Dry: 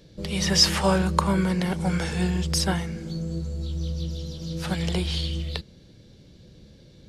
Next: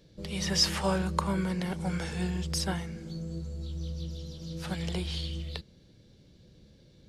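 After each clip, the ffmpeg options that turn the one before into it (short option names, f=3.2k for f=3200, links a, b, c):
-af "aeval=exprs='0.631*(cos(1*acos(clip(val(0)/0.631,-1,1)))-cos(1*PI/2))+0.0282*(cos(2*acos(clip(val(0)/0.631,-1,1)))-cos(2*PI/2))':c=same,volume=-7dB"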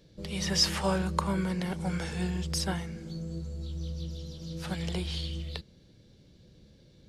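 -af anull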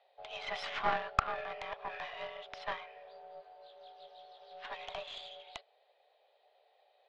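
-af "highpass=f=330:t=q:w=0.5412,highpass=f=330:t=q:w=1.307,lowpass=f=3.3k:t=q:w=0.5176,lowpass=f=3.3k:t=q:w=0.7071,lowpass=f=3.3k:t=q:w=1.932,afreqshift=240,aeval=exprs='0.266*(cos(1*acos(clip(val(0)/0.266,-1,1)))-cos(1*PI/2))+0.0668*(cos(2*acos(clip(val(0)/0.266,-1,1)))-cos(2*PI/2))+0.0211*(cos(6*acos(clip(val(0)/0.266,-1,1)))-cos(6*PI/2))+0.0119*(cos(7*acos(clip(val(0)/0.266,-1,1)))-cos(7*PI/2))':c=same"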